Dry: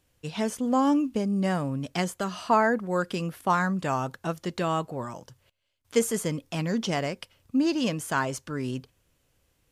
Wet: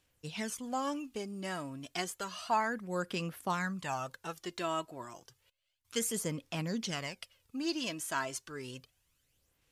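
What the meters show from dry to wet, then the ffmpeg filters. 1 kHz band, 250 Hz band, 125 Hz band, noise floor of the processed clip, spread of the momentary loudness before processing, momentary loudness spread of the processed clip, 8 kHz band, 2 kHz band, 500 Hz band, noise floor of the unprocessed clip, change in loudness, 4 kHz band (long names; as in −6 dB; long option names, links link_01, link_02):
−8.5 dB, −12.5 dB, −11.0 dB, −77 dBFS, 11 LU, 11 LU, −2.5 dB, −7.0 dB, −10.5 dB, −71 dBFS, −9.0 dB, −3.5 dB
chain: -af "tiltshelf=frequency=1200:gain=-5,aphaser=in_gain=1:out_gain=1:delay=3.1:decay=0.5:speed=0.31:type=sinusoidal,volume=-8.5dB"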